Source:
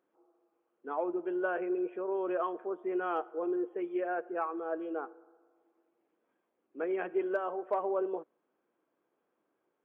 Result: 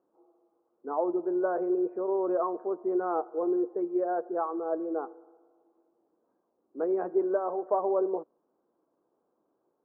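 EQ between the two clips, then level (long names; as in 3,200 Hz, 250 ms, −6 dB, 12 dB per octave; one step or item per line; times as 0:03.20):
low-pass filter 1,100 Hz 24 dB per octave
+5.0 dB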